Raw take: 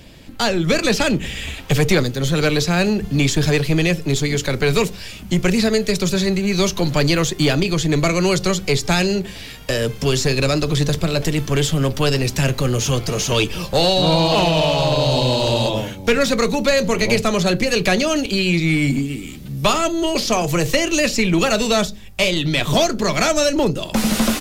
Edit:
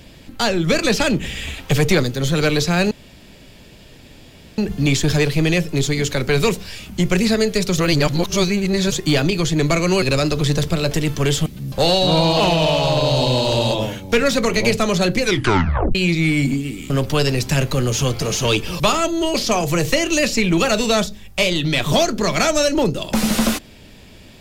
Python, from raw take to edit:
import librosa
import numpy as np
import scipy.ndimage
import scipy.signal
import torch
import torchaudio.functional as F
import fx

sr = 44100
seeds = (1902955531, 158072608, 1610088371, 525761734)

y = fx.edit(x, sr, fx.insert_room_tone(at_s=2.91, length_s=1.67),
    fx.reverse_span(start_s=6.11, length_s=1.14),
    fx.cut(start_s=8.35, length_s=1.98),
    fx.swap(start_s=11.77, length_s=1.9, other_s=19.35, other_length_s=0.26),
    fx.cut(start_s=16.4, length_s=0.5),
    fx.tape_stop(start_s=17.65, length_s=0.75), tone=tone)